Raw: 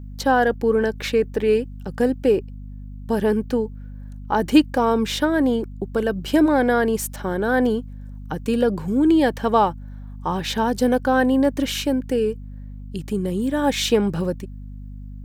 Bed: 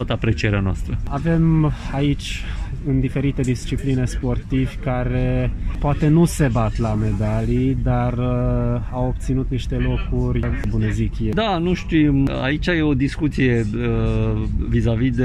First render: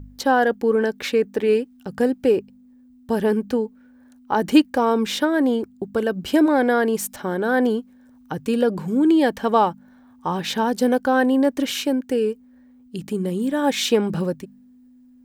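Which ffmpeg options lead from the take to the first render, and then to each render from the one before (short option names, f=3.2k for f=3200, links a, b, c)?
-af "bandreject=f=50:t=h:w=4,bandreject=f=100:t=h:w=4,bandreject=f=150:t=h:w=4,bandreject=f=200:t=h:w=4"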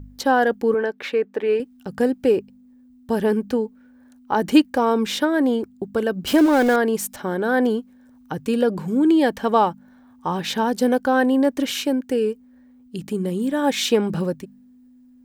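-filter_complex "[0:a]asettb=1/sr,asplit=3[a][b][c];[a]atrim=end=0.744[d];[b]atrim=start=0.74:end=1.6,asetpts=PTS-STARTPTS,afade=t=in:d=0.004:c=qsin,afade=t=out:st=0.856:d=0.004:c=qsin,bass=f=250:g=-13,treble=f=4k:g=-13[e];[c]atrim=start=1.596[f];[d][e]acrossfade=d=0.004:c1=hsin:c2=qsin[g];[g][f]acrossfade=d=0.004:c1=qsin:c2=hsin,asettb=1/sr,asplit=3[h][i][j];[h]atrim=end=6.274[k];[i]atrim=start=6.27:end=6.76,asetpts=PTS-STARTPTS,afade=t=in:d=0.004:c=qsin,afade=t=out:st=0.486:d=0.004:c=qsin,aeval=exprs='val(0)+0.5*0.0596*sgn(val(0))':c=same[l];[j]atrim=start=6.756[m];[k][l]acrossfade=d=0.004:c1=hsin:c2=qsin[n];[n][m]acrossfade=d=0.004:c1=qsin:c2=hsin"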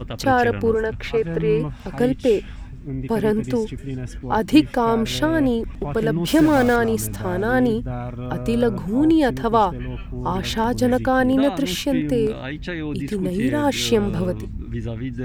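-filter_complex "[1:a]volume=-9.5dB[a];[0:a][a]amix=inputs=2:normalize=0"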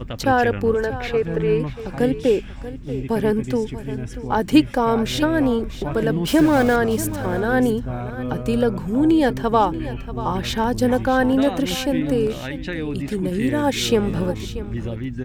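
-af "aecho=1:1:636:0.2"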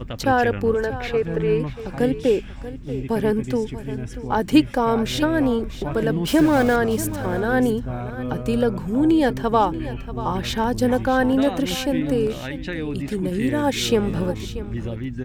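-af "volume=-1dB"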